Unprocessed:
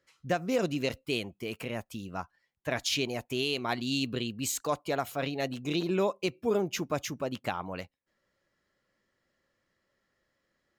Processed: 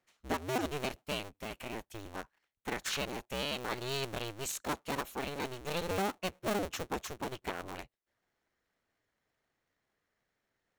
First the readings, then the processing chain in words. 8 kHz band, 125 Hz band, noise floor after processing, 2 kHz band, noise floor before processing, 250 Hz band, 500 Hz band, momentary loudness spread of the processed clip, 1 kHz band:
-4.0 dB, -6.0 dB, -84 dBFS, -3.0 dB, -79 dBFS, -7.5 dB, -6.5 dB, 10 LU, -2.0 dB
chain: cycle switcher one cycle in 2, inverted; notch 4900 Hz, Q 15; gain -5.5 dB

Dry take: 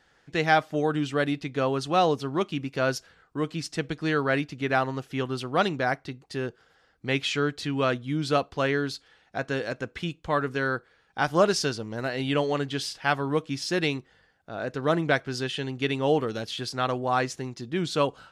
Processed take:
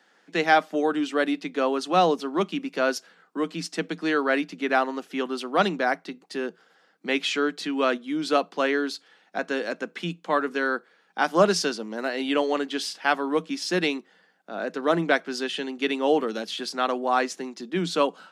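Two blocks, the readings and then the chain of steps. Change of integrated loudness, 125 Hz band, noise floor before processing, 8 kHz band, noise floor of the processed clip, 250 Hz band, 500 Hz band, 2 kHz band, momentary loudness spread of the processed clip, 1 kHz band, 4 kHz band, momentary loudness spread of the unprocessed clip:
+1.5 dB, -8.5 dB, -64 dBFS, +1.5 dB, -62 dBFS, +2.0 dB, +2.0 dB, +2.0 dB, 11 LU, +2.5 dB, +1.5 dB, 10 LU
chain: Chebyshev high-pass 170 Hz, order 8; gain +2.5 dB

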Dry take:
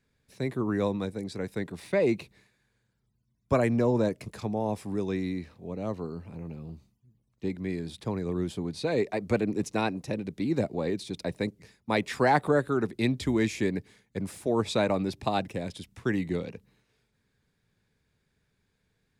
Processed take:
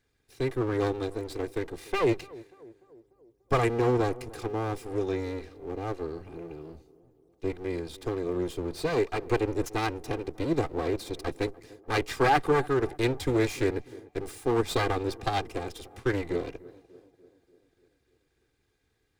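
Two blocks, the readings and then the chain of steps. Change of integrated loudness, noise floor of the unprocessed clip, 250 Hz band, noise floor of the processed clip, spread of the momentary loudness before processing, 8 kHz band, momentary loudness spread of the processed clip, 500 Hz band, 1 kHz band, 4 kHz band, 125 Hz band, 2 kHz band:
0.0 dB, -75 dBFS, -2.5 dB, -73 dBFS, 12 LU, +1.0 dB, 13 LU, +1.0 dB, +2.0 dB, +1.0 dB, -0.5 dB, +1.0 dB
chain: minimum comb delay 2.5 ms; tape echo 0.294 s, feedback 66%, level -18.5 dB, low-pass 1000 Hz; gain +1.5 dB

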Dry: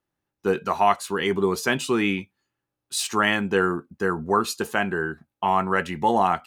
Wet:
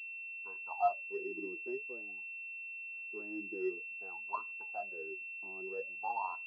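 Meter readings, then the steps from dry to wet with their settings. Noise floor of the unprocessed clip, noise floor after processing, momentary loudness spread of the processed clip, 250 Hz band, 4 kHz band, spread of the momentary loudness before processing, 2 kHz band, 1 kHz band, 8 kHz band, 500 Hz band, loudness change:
-85 dBFS, -45 dBFS, 8 LU, -21.5 dB, under -35 dB, 7 LU, -13.5 dB, -16.5 dB, under -40 dB, -17.0 dB, -16.0 dB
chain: wah 0.51 Hz 320–1000 Hz, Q 20; pulse-width modulation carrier 2700 Hz; gain -5 dB

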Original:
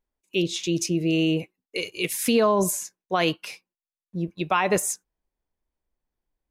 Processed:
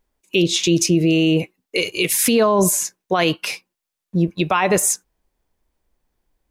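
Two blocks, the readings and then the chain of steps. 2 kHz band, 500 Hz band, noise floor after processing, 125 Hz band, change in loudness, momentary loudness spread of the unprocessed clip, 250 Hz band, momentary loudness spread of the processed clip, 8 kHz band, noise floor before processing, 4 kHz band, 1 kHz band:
+6.0 dB, +5.5 dB, -83 dBFS, +8.0 dB, +6.5 dB, 12 LU, +6.5 dB, 10 LU, +9.5 dB, under -85 dBFS, +7.5 dB, +4.0 dB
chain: in parallel at -3 dB: compressor, threshold -28 dBFS, peak gain reduction 11.5 dB; on the sum: limiter -15 dBFS, peak gain reduction 6.5 dB; gain +7.5 dB

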